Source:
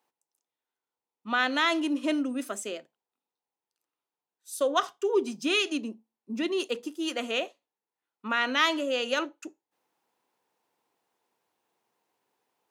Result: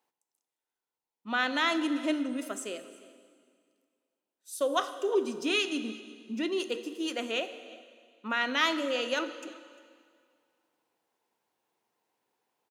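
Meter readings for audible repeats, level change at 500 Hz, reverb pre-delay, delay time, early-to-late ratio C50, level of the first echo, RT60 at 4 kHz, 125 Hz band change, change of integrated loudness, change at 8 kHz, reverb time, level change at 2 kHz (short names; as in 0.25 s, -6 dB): 1, -2.0 dB, 6 ms, 0.35 s, 11.0 dB, -22.0 dB, 1.8 s, n/a, -2.5 dB, -2.0 dB, 2.0 s, -2.0 dB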